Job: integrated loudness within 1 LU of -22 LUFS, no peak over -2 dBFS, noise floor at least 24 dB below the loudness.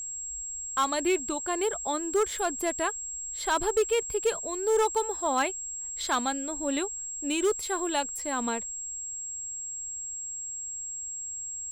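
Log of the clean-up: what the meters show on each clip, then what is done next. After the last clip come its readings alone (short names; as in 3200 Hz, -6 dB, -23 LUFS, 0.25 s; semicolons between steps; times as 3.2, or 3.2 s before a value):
clipped 0.4%; flat tops at -18.5 dBFS; steady tone 7600 Hz; tone level -34 dBFS; loudness -29.5 LUFS; peak -18.5 dBFS; loudness target -22.0 LUFS
-> clip repair -18.5 dBFS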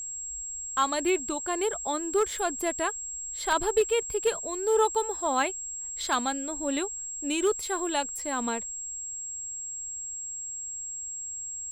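clipped 0.0%; steady tone 7600 Hz; tone level -34 dBFS
-> notch 7600 Hz, Q 30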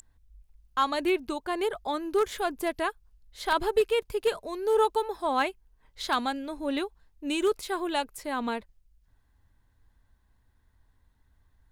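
steady tone none; loudness -29.5 LUFS; peak -11.5 dBFS; loudness target -22.0 LUFS
-> gain +7.5 dB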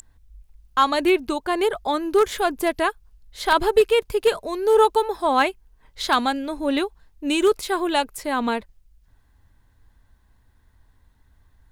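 loudness -22.0 LUFS; peak -4.0 dBFS; noise floor -60 dBFS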